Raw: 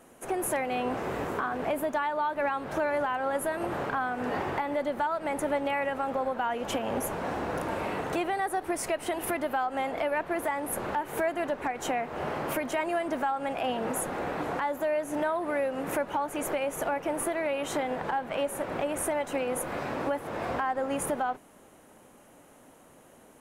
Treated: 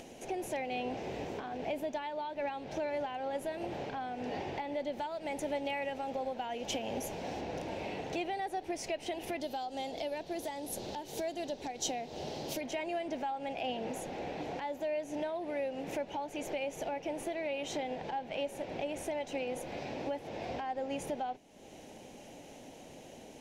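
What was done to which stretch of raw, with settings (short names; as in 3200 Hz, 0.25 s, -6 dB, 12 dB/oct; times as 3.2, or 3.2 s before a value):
4.93–7.41 high shelf 5900 Hz +8 dB
9.4–12.61 EQ curve 390 Hz 0 dB, 2400 Hz -6 dB, 3900 Hz +9 dB
whole clip: upward compressor, threshold -32 dBFS; EQ curve 820 Hz 0 dB, 1200 Hz -16 dB, 2400 Hz +3 dB, 5900 Hz +6 dB, 9200 Hz -10 dB; gain -6.5 dB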